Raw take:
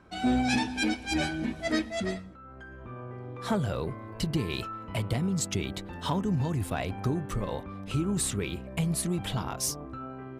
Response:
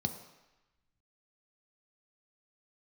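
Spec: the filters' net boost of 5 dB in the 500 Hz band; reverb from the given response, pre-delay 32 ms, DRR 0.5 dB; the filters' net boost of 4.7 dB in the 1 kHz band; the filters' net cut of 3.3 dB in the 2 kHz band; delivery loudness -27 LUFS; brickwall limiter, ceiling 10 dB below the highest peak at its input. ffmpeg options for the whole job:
-filter_complex "[0:a]equalizer=f=500:t=o:g=5.5,equalizer=f=1000:t=o:g=5.5,equalizer=f=2000:t=o:g=-6.5,alimiter=limit=0.0708:level=0:latency=1,asplit=2[s0][s1];[1:a]atrim=start_sample=2205,adelay=32[s2];[s1][s2]afir=irnorm=-1:irlink=0,volume=0.708[s3];[s0][s3]amix=inputs=2:normalize=0,volume=0.794"

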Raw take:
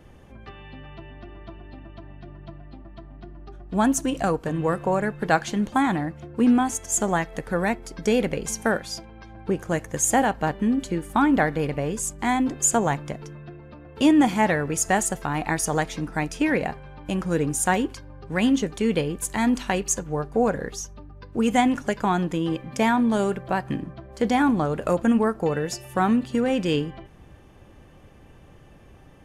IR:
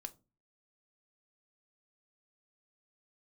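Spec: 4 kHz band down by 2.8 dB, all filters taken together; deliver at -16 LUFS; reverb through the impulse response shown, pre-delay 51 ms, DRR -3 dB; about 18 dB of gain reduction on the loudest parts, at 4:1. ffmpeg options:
-filter_complex "[0:a]equalizer=f=4000:t=o:g=-4,acompressor=threshold=0.0141:ratio=4,asplit=2[s0][s1];[1:a]atrim=start_sample=2205,adelay=51[s2];[s1][s2]afir=irnorm=-1:irlink=0,volume=2.37[s3];[s0][s3]amix=inputs=2:normalize=0,volume=7.94"

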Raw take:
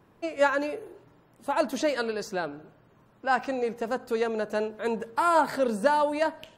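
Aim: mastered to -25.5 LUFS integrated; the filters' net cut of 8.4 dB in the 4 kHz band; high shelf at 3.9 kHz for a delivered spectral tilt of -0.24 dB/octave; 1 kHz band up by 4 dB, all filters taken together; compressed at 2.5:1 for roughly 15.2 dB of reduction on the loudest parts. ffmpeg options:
-af "equalizer=f=1000:t=o:g=5.5,highshelf=f=3900:g=-6,equalizer=f=4000:t=o:g=-8,acompressor=threshold=0.0112:ratio=2.5,volume=4.22"

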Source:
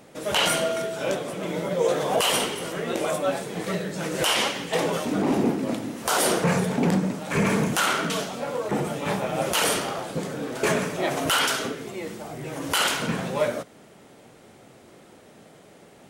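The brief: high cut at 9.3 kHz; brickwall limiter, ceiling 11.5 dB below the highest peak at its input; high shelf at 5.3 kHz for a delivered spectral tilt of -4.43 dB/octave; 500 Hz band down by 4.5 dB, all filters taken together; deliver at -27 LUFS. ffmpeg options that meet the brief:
-af "lowpass=9300,equalizer=f=500:t=o:g=-5.5,highshelf=f=5300:g=-6,volume=1.68,alimiter=limit=0.126:level=0:latency=1"

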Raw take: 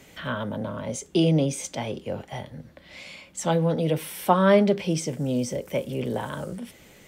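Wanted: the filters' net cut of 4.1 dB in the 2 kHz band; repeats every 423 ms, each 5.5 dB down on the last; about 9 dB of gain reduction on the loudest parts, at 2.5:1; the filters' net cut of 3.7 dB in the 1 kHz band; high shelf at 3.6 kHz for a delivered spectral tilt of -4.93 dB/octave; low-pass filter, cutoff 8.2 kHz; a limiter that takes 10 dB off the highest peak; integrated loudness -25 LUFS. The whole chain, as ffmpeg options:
-af "lowpass=8200,equalizer=f=1000:t=o:g=-4,equalizer=f=2000:t=o:g=-5,highshelf=f=3600:g=4,acompressor=threshold=0.0355:ratio=2.5,alimiter=level_in=1.19:limit=0.0631:level=0:latency=1,volume=0.841,aecho=1:1:423|846|1269|1692|2115|2538|2961:0.531|0.281|0.149|0.079|0.0419|0.0222|0.0118,volume=2.82"

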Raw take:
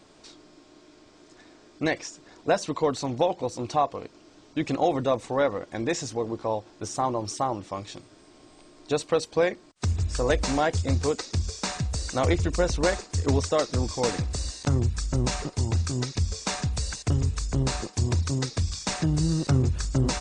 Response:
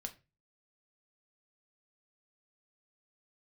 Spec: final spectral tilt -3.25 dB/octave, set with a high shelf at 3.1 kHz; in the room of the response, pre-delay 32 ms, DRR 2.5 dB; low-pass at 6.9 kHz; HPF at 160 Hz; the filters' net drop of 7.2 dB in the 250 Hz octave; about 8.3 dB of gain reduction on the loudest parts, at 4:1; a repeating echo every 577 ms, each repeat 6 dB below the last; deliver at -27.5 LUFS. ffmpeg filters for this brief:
-filter_complex "[0:a]highpass=160,lowpass=6900,equalizer=f=250:t=o:g=-9,highshelf=f=3100:g=5.5,acompressor=threshold=0.0355:ratio=4,aecho=1:1:577|1154|1731|2308|2885|3462:0.501|0.251|0.125|0.0626|0.0313|0.0157,asplit=2[s0][s1];[1:a]atrim=start_sample=2205,adelay=32[s2];[s1][s2]afir=irnorm=-1:irlink=0,volume=1.06[s3];[s0][s3]amix=inputs=2:normalize=0,volume=1.5"

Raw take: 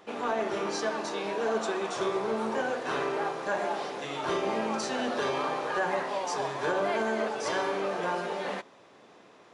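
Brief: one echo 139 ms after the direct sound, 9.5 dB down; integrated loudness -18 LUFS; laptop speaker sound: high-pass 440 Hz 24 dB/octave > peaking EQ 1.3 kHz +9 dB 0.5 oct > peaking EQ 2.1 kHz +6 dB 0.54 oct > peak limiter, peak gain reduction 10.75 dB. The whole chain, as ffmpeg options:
-af "highpass=f=440:w=0.5412,highpass=f=440:w=1.3066,equalizer=f=1300:t=o:w=0.5:g=9,equalizer=f=2100:t=o:w=0.54:g=6,aecho=1:1:139:0.335,volume=5.62,alimiter=limit=0.316:level=0:latency=1"

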